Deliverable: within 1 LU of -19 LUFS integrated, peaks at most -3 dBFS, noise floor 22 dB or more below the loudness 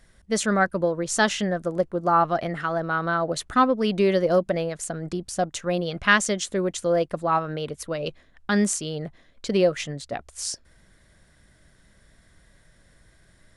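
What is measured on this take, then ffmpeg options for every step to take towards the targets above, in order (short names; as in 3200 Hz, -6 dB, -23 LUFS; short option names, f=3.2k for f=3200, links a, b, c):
loudness -24.5 LUFS; peak -3.5 dBFS; loudness target -19.0 LUFS
-> -af "volume=5.5dB,alimiter=limit=-3dB:level=0:latency=1"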